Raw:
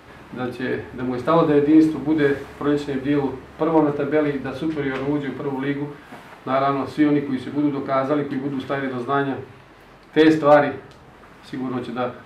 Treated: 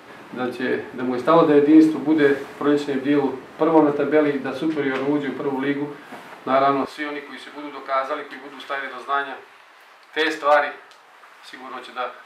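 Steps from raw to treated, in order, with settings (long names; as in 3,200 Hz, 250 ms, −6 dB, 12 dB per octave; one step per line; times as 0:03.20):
high-pass filter 220 Hz 12 dB per octave, from 0:06.85 840 Hz
level +2.5 dB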